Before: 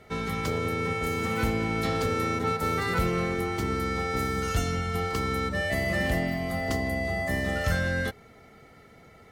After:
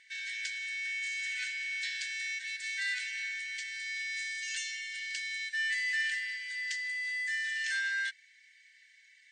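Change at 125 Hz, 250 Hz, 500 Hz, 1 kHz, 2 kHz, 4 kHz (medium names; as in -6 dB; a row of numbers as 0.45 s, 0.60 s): under -40 dB, under -40 dB, under -40 dB, under -40 dB, 0.0 dB, 0.0 dB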